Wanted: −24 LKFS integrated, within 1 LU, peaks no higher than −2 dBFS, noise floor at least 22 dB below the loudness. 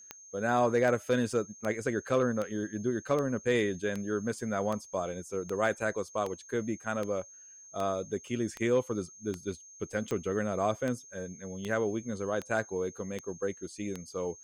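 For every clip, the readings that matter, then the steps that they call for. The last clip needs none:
number of clicks 19; interfering tone 6,400 Hz; level of the tone −50 dBFS; integrated loudness −32.5 LKFS; sample peak −15.5 dBFS; target loudness −24.0 LKFS
→ click removal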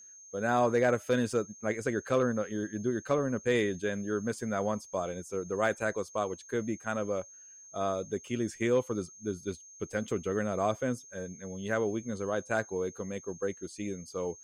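number of clicks 0; interfering tone 6,400 Hz; level of the tone −50 dBFS
→ notch filter 6,400 Hz, Q 30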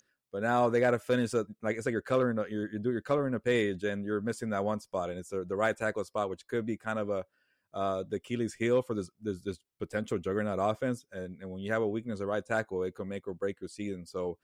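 interfering tone none found; integrated loudness −32.5 LKFS; sample peak −16.0 dBFS; target loudness −24.0 LKFS
→ level +8.5 dB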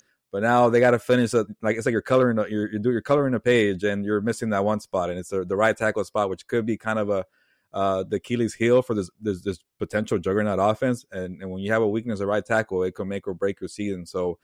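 integrated loudness −24.0 LKFS; sample peak −7.5 dBFS; background noise floor −71 dBFS

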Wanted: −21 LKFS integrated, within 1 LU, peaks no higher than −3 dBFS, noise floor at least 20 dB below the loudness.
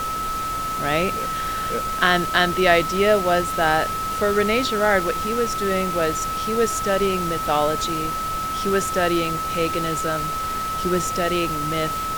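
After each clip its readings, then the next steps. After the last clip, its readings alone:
interfering tone 1,300 Hz; level of the tone −24 dBFS; background noise floor −26 dBFS; target noise floor −42 dBFS; integrated loudness −21.5 LKFS; sample peak −2.5 dBFS; target loudness −21.0 LKFS
→ notch filter 1,300 Hz, Q 30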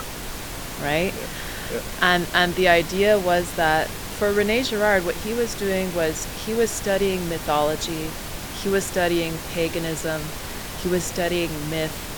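interfering tone none found; background noise floor −33 dBFS; target noise floor −43 dBFS
→ noise reduction from a noise print 10 dB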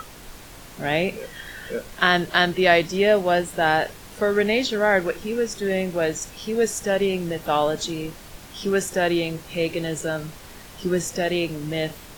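background noise floor −43 dBFS; integrated loudness −23.0 LKFS; sample peak −2.5 dBFS; target loudness −21.0 LKFS
→ level +2 dB
brickwall limiter −3 dBFS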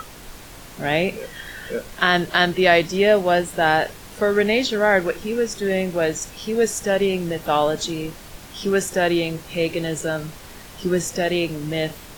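integrated loudness −21.0 LKFS; sample peak −3.0 dBFS; background noise floor −41 dBFS

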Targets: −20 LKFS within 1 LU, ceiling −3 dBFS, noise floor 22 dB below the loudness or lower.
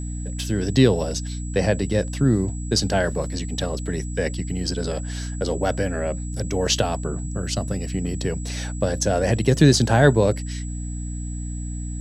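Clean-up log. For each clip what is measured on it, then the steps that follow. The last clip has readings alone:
mains hum 60 Hz; hum harmonics up to 300 Hz; level of the hum −27 dBFS; interfering tone 7,800 Hz; level of the tone −40 dBFS; integrated loudness −23.0 LKFS; sample peak −2.0 dBFS; target loudness −20.0 LKFS
→ hum removal 60 Hz, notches 5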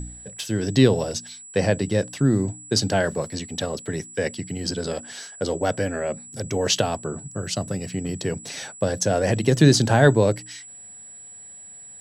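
mains hum none found; interfering tone 7,800 Hz; level of the tone −40 dBFS
→ notch filter 7,800 Hz, Q 30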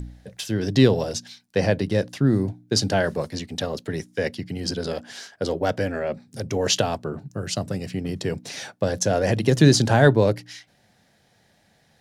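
interfering tone none found; integrated loudness −23.5 LKFS; sample peak −2.5 dBFS; target loudness −20.0 LKFS
→ level +3.5 dB
brickwall limiter −3 dBFS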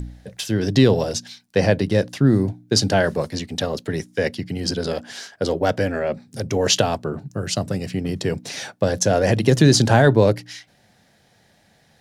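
integrated loudness −20.5 LKFS; sample peak −3.0 dBFS; background noise floor −58 dBFS

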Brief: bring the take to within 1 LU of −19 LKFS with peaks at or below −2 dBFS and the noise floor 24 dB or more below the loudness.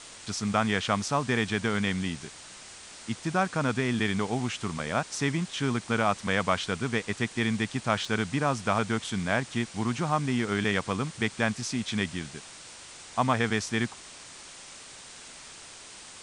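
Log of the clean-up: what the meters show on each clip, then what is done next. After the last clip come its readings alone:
number of dropouts 1; longest dropout 3.0 ms; background noise floor −47 dBFS; target noise floor −53 dBFS; integrated loudness −28.5 LKFS; sample peak −9.0 dBFS; target loudness −19.0 LKFS
→ repair the gap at 0:08.05, 3 ms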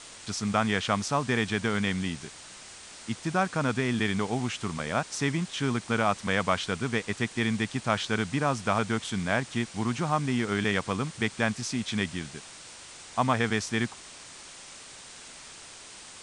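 number of dropouts 0; background noise floor −47 dBFS; target noise floor −53 dBFS
→ broadband denoise 6 dB, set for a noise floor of −47 dBFS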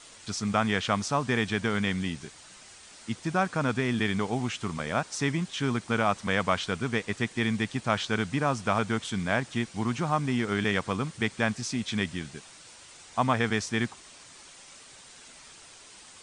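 background noise floor −51 dBFS; target noise floor −53 dBFS
→ broadband denoise 6 dB, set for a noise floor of −51 dBFS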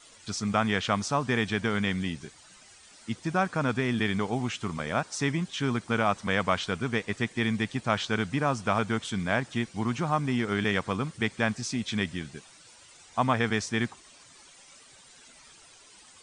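background noise floor −54 dBFS; integrated loudness −29.0 LKFS; sample peak −9.0 dBFS; target loudness −19.0 LKFS
→ level +10 dB
brickwall limiter −2 dBFS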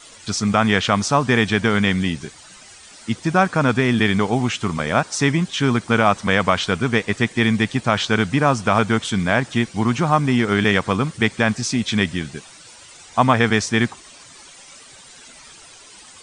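integrated loudness −19.0 LKFS; sample peak −2.0 dBFS; background noise floor −44 dBFS

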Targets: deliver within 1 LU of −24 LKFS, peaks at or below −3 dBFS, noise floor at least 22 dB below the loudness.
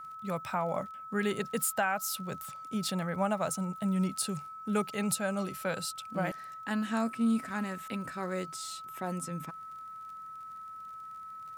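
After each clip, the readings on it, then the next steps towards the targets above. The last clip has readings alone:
crackle rate 27 per second; interfering tone 1,300 Hz; level of the tone −42 dBFS; integrated loudness −33.5 LKFS; sample peak −17.5 dBFS; target loudness −24.0 LKFS
→ click removal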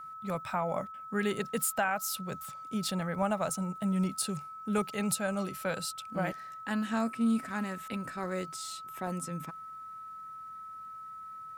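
crackle rate 1.6 per second; interfering tone 1,300 Hz; level of the tone −42 dBFS
→ notch filter 1,300 Hz, Q 30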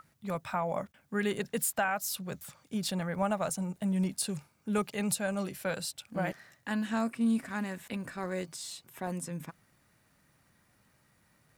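interfering tone none found; integrated loudness −34.0 LKFS; sample peak −18.0 dBFS; target loudness −24.0 LKFS
→ level +10 dB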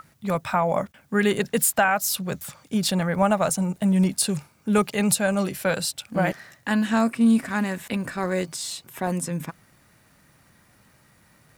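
integrated loudness −24.0 LKFS; sample peak −8.0 dBFS; background noise floor −59 dBFS

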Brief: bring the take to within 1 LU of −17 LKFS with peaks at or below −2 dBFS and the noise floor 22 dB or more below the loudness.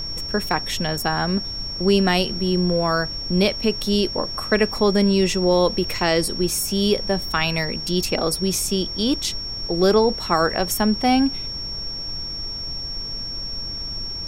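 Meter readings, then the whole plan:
interfering tone 5,500 Hz; level of the tone −28 dBFS; background noise floor −30 dBFS; target noise floor −44 dBFS; integrated loudness −21.5 LKFS; sample peak −4.5 dBFS; target loudness −17.0 LKFS
→ notch filter 5,500 Hz, Q 30
noise reduction from a noise print 14 dB
level +4.5 dB
brickwall limiter −2 dBFS

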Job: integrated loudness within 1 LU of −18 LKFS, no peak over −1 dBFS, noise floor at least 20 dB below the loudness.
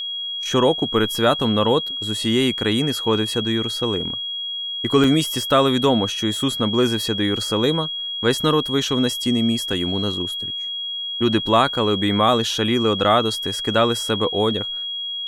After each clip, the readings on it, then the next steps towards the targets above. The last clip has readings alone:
number of dropouts 2; longest dropout 2.6 ms; interfering tone 3,300 Hz; level of the tone −25 dBFS; integrated loudness −20.0 LKFS; sample peak −3.5 dBFS; target loudness −18.0 LKFS
→ repair the gap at 0:05.04/0:09.73, 2.6 ms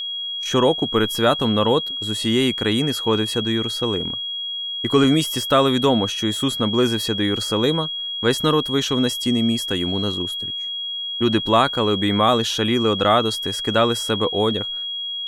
number of dropouts 0; interfering tone 3,300 Hz; level of the tone −25 dBFS
→ notch filter 3,300 Hz, Q 30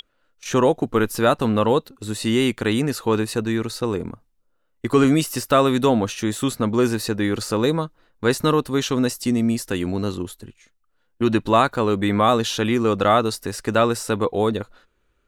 interfering tone none found; integrated loudness −21.0 LKFS; sample peak −4.5 dBFS; target loudness −18.0 LKFS
→ level +3 dB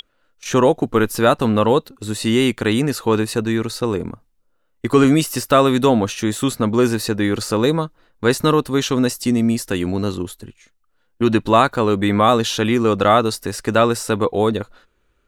integrated loudness −18.0 LKFS; sample peak −1.5 dBFS; background noise floor −64 dBFS

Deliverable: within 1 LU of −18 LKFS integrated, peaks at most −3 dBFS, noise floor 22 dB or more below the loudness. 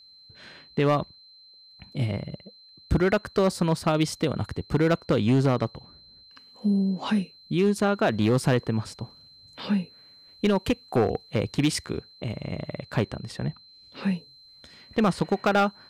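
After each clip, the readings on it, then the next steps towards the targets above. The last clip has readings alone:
share of clipped samples 1.3%; peaks flattened at −15.5 dBFS; interfering tone 4,100 Hz; level of the tone −50 dBFS; integrated loudness −26.0 LKFS; sample peak −15.5 dBFS; target loudness −18.0 LKFS
→ clipped peaks rebuilt −15.5 dBFS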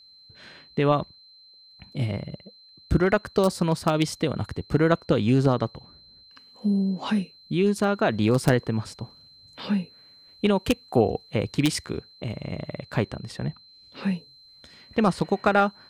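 share of clipped samples 0.0%; interfering tone 4,100 Hz; level of the tone −50 dBFS
→ notch filter 4,100 Hz, Q 30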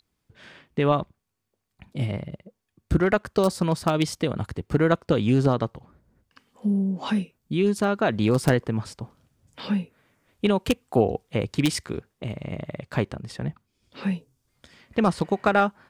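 interfering tone none found; integrated loudness −25.5 LKFS; sample peak −6.5 dBFS; target loudness −18.0 LKFS
→ level +7.5 dB
brickwall limiter −3 dBFS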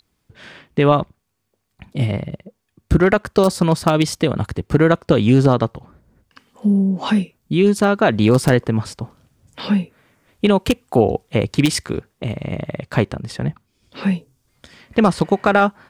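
integrated loudness −18.5 LKFS; sample peak −3.0 dBFS; background noise floor −70 dBFS

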